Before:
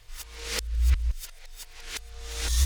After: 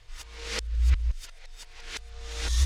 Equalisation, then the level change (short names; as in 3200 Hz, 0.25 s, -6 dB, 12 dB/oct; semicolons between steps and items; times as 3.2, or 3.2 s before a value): air absorption 55 m; 0.0 dB